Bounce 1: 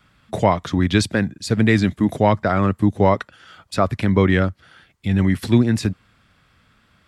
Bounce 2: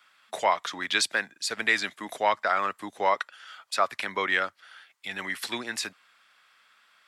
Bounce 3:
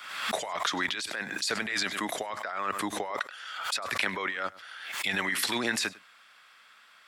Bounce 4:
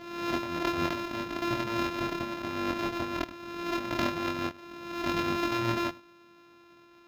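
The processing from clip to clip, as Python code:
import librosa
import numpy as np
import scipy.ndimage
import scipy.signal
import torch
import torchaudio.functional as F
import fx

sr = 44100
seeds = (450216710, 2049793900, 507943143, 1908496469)

y1 = scipy.signal.sosfilt(scipy.signal.butter(2, 980.0, 'highpass', fs=sr, output='sos'), x)
y2 = fx.over_compress(y1, sr, threshold_db=-32.0, ratio=-1.0)
y2 = y2 + 10.0 ** (-21.0 / 20.0) * np.pad(y2, (int(101 * sr / 1000.0), 0))[:len(y2)]
y2 = fx.pre_swell(y2, sr, db_per_s=54.0)
y3 = np.r_[np.sort(y2[:len(y2) // 128 * 128].reshape(-1, 128), axis=1).ravel(), y2[len(y2) // 128 * 128:]]
y3 = np.convolve(y3, np.full(5, 1.0 / 5))[:len(y3)]
y3 = fx.doubler(y3, sr, ms=24.0, db=-3)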